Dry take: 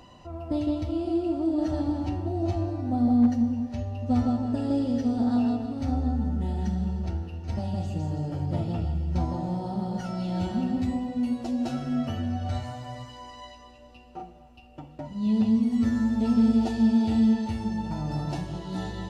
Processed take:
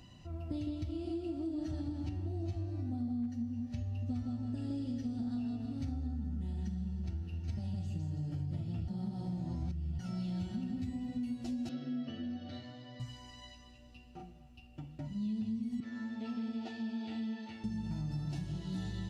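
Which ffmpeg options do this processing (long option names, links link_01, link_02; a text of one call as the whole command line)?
ffmpeg -i in.wav -filter_complex "[0:a]asettb=1/sr,asplit=3[link_01][link_02][link_03];[link_01]atrim=end=11.694[link_04];[link_02]atrim=start=11.69:end=13,asetpts=PTS-STARTPTS,afade=type=in:duration=0.004:curve=qsin,afade=type=out:start_time=1.306:duration=0.004:curve=qsin,highpass=290,equalizer=frequency=290:width_type=q:width=4:gain=6,equalizer=frequency=500:width_type=q:width=4:gain=6,equalizer=frequency=820:width_type=q:width=4:gain=-10,equalizer=frequency=1400:width_type=q:width=4:gain=-6,equalizer=frequency=2400:width_type=q:width=4:gain=-8,lowpass=frequency=4400:width=0.5412,lowpass=frequency=4400:width=1.3066[link_05];[link_03]atrim=start=12.996[link_06];[link_04][link_05]acrossfade=duration=0.004:curve1=hsin:curve2=qsin[link_07];[link_07][link_06]acrossfade=duration=0.004:curve1=qsin:curve2=hsin,asettb=1/sr,asplit=3[link_08][link_09][link_10];[link_08]atrim=end=15.804[link_11];[link_09]atrim=start=15.8:end=17.64,asetpts=PTS-STARTPTS,afade=type=in:duration=0.004:curve=qsin,afade=type=out:start_time=1.836:duration=0.004:curve=qsin,highpass=430,lowpass=3300[link_12];[link_10]atrim=start=17.636[link_13];[link_11][link_12]acrossfade=duration=0.004:curve1=hsin:curve2=qsin[link_14];[link_14][link_13]acrossfade=duration=0.004:curve1=qsin:curve2=hsin,asplit=3[link_15][link_16][link_17];[link_15]atrim=end=8.882[link_18];[link_16]atrim=start=8.878:end=9.992,asetpts=PTS-STARTPTS,areverse[link_19];[link_17]atrim=start=9.988[link_20];[link_18][link_19]acrossfade=duration=0.004:curve1=hsin:curve2=hsin[link_21];[link_21][link_20]acrossfade=duration=0.004:curve1=hsin:curve2=hsin,equalizer=frequency=125:width_type=o:width=1:gain=5,equalizer=frequency=500:width_type=o:width=1:gain=-9,equalizer=frequency=1000:width_type=o:width=1:gain=-10,acompressor=threshold=-31dB:ratio=6,volume=-3.5dB" out.wav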